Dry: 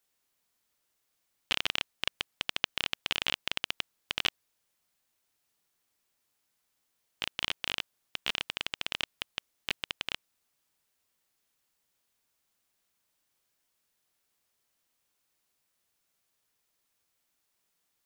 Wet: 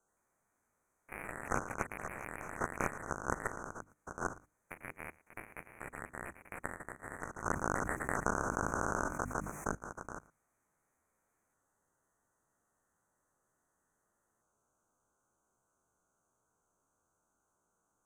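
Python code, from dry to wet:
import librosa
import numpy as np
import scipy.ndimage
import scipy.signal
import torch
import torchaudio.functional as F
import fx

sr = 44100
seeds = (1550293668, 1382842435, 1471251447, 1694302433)

y = fx.spec_steps(x, sr, hold_ms=50)
y = scipy.signal.sosfilt(scipy.signal.cheby1(5, 1.0, [1500.0, 6200.0], 'bandstop', fs=sr, output='sos'), y)
y = fx.air_absorb(y, sr, metres=91.0)
y = fx.hum_notches(y, sr, base_hz=50, count=6)
y = fx.dynamic_eq(y, sr, hz=850.0, q=1.4, threshold_db=-60.0, ratio=4.0, max_db=-3)
y = fx.echo_pitch(y, sr, ms=84, semitones=4, count=2, db_per_echo=-3.0)
y = fx.level_steps(y, sr, step_db=12)
y = y + 10.0 ** (-22.0 / 20.0) * np.pad(y, (int(114 * sr / 1000.0), 0))[:len(y)]
y = fx.env_flatten(y, sr, amount_pct=70, at=(7.45, 9.75))
y = F.gain(torch.from_numpy(y), 15.0).numpy()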